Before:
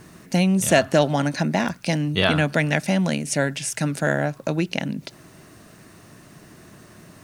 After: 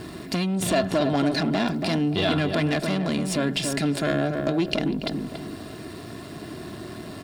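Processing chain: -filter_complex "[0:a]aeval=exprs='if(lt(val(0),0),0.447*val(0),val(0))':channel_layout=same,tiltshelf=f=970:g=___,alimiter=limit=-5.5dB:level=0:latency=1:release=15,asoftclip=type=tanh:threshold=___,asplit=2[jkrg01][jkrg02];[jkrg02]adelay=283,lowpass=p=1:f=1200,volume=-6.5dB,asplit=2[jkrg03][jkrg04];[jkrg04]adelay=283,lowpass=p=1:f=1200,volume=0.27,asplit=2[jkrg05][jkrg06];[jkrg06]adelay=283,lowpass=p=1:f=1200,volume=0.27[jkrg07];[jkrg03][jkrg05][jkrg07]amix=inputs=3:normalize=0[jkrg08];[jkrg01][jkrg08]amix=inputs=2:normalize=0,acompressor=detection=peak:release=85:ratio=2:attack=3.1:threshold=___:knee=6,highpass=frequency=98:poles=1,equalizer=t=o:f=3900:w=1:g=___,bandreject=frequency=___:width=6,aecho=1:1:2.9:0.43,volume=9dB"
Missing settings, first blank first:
5.5, -14.5dB, -34dB, 10, 6200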